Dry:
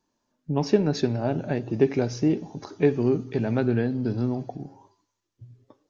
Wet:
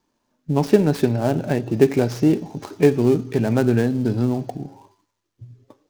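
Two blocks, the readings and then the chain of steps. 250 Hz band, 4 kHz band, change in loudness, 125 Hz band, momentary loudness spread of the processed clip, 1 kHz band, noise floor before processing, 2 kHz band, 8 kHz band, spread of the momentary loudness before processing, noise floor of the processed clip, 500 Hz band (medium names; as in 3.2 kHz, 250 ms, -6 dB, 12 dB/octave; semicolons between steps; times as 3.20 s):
+5.5 dB, +2.5 dB, +5.5 dB, +5.5 dB, 9 LU, +5.5 dB, -79 dBFS, +5.5 dB, no reading, 9 LU, -75 dBFS, +5.5 dB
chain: dead-time distortion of 0.087 ms; trim +5.5 dB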